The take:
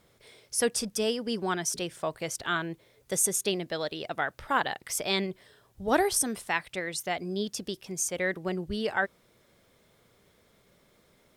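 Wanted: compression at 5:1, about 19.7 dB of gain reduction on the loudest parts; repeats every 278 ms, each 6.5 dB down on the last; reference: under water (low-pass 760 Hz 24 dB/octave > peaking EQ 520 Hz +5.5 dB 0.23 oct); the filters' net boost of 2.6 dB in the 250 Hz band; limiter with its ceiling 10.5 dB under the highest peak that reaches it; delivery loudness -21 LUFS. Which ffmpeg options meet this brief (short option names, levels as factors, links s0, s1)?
-af "equalizer=f=250:t=o:g=3.5,acompressor=threshold=0.00794:ratio=5,alimiter=level_in=5.31:limit=0.0631:level=0:latency=1,volume=0.188,lowpass=f=760:w=0.5412,lowpass=f=760:w=1.3066,equalizer=f=520:t=o:w=0.23:g=5.5,aecho=1:1:278|556|834|1112|1390|1668:0.473|0.222|0.105|0.0491|0.0231|0.0109,volume=25.1"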